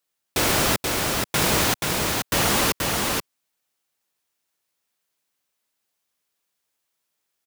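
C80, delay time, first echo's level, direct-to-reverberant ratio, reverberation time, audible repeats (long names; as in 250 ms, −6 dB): no reverb audible, 480 ms, −3.5 dB, no reverb audible, no reverb audible, 1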